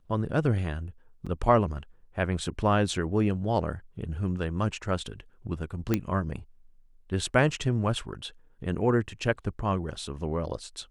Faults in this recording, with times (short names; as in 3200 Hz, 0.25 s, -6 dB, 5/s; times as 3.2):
1.26–1.27 gap 5.8 ms
5.94 pop -11 dBFS